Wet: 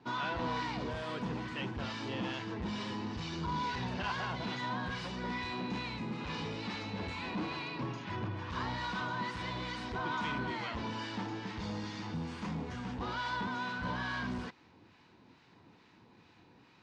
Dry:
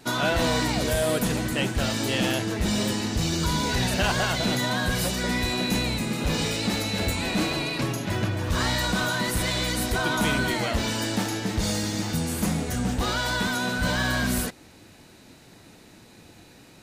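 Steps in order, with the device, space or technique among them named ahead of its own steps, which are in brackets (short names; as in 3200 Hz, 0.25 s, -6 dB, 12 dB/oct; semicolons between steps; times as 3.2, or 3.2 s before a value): guitar amplifier with harmonic tremolo (harmonic tremolo 2.3 Hz, depth 50%, crossover 1000 Hz; soft clip -22 dBFS, distortion -17 dB; speaker cabinet 76–4600 Hz, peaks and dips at 610 Hz -6 dB, 1000 Hz +9 dB, 4000 Hz -4 dB); gain -8 dB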